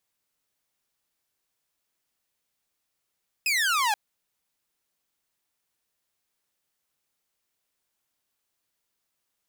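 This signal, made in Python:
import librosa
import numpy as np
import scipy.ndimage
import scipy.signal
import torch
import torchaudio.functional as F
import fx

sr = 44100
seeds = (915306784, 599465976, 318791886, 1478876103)

y = fx.laser_zap(sr, level_db=-19.0, start_hz=2600.0, end_hz=800.0, length_s=0.48, wave='saw')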